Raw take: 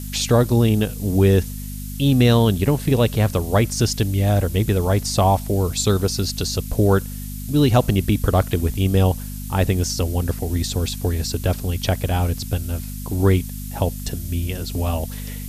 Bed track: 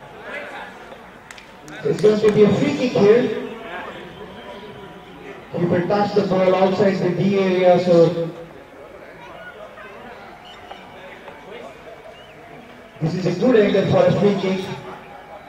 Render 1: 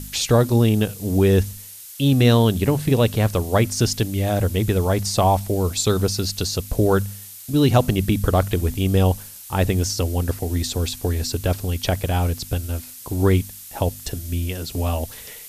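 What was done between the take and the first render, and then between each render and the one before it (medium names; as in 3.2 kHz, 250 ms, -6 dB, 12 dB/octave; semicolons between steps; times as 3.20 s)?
de-hum 50 Hz, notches 5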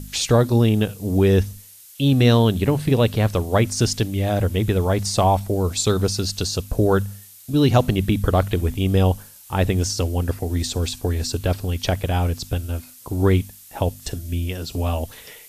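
noise print and reduce 6 dB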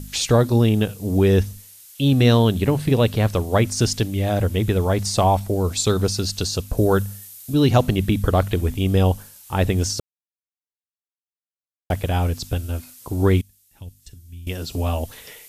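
6.77–7.54 s: treble shelf 8.1 kHz +6.5 dB; 10.00–11.90 s: mute; 13.41–14.47 s: amplifier tone stack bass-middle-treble 6-0-2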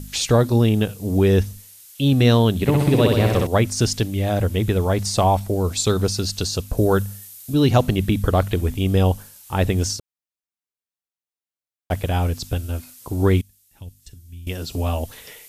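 2.55–3.47 s: flutter echo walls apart 10.8 m, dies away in 1.2 s; 9.96–11.91 s: compression, threshold -32 dBFS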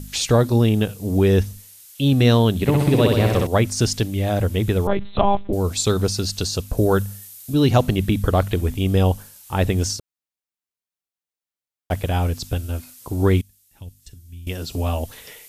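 4.87–5.53 s: monotone LPC vocoder at 8 kHz 200 Hz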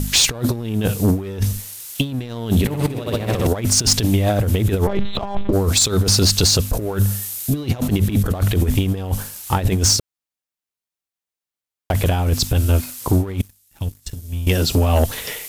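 compressor with a negative ratio -23 dBFS, ratio -0.5; waveshaping leveller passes 2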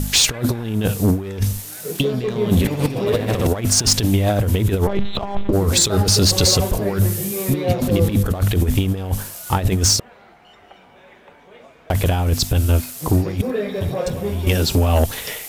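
add bed track -9 dB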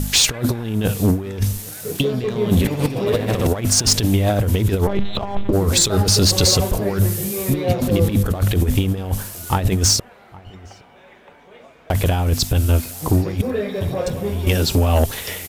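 echo from a far wall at 140 m, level -22 dB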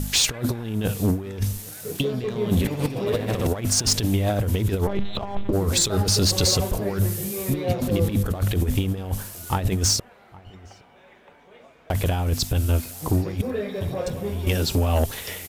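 trim -5 dB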